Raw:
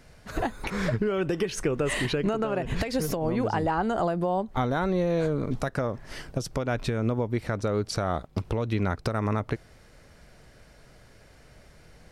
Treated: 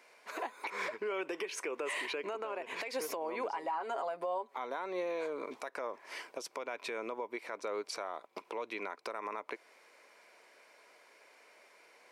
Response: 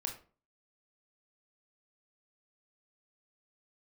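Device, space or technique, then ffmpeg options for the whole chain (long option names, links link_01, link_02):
laptop speaker: -filter_complex "[0:a]asettb=1/sr,asplit=3[link_01][link_02][link_03];[link_01]atrim=end=3.504[link_04];[link_02]atrim=start=3.5:end=4.56,asetpts=PTS-STARTPTS,afade=type=in:duration=0.004:curve=qsin,afade=type=out:start_time=1.056:duration=0.004:curve=qsin,aecho=1:1:7.3:0.74,atrim=end_sample=46746[link_05];[link_03]atrim=start=4.556[link_06];[link_04][link_05]acrossfade=duration=0.004:curve1=hsin:curve2=qsin[link_07];[link_07][link_06]acrossfade=duration=0.004:curve1=qsin:curve2=hsin,highpass=frequency=370:width=0.5412,highpass=frequency=370:width=1.3066,equalizer=frequency=1000:width_type=o:width=0.26:gain=10.5,equalizer=frequency=2300:width_type=o:width=0.34:gain=10,alimiter=limit=-22dB:level=0:latency=1:release=168,volume=-6dB"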